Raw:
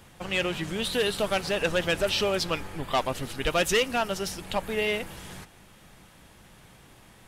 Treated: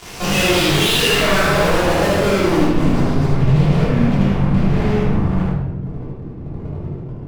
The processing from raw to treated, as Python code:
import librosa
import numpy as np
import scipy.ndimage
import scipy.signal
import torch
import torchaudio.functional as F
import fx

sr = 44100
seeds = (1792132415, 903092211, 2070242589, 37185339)

p1 = fx.filter_sweep_lowpass(x, sr, from_hz=5800.0, to_hz=140.0, start_s=0.41, end_s=3.2, q=3.1)
p2 = fx.fuzz(p1, sr, gain_db=48.0, gate_db=-48.0)
p3 = p2 + fx.echo_single(p2, sr, ms=76, db=-3.5, dry=0)
p4 = fx.room_shoebox(p3, sr, seeds[0], volume_m3=350.0, walls='mixed', distance_m=3.2)
y = p4 * 10.0 ** (-12.0 / 20.0)